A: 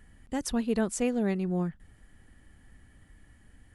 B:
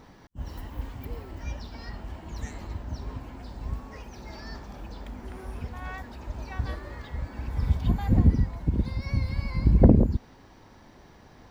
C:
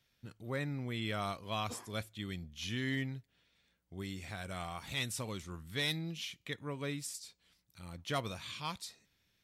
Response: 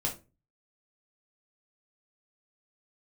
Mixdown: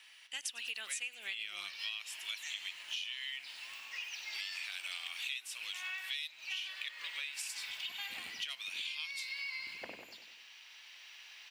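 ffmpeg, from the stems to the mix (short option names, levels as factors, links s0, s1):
-filter_complex "[0:a]volume=1.19,asplit=3[s0][s1][s2];[s1]volume=0.106[s3];[1:a]volume=0.794,asplit=2[s4][s5];[s5]volume=0.376[s6];[2:a]adelay=350,volume=0.841[s7];[s2]apad=whole_len=507538[s8];[s4][s8]sidechaincompress=threshold=0.0126:ratio=8:attack=16:release=200[s9];[s3][s6]amix=inputs=2:normalize=0,aecho=0:1:96|192|288|384|480|576|672:1|0.51|0.26|0.133|0.0677|0.0345|0.0176[s10];[s0][s9][s7][s10]amix=inputs=4:normalize=0,dynaudnorm=f=270:g=5:m=2,highpass=f=2700:t=q:w=4.4,acompressor=threshold=0.0141:ratio=12"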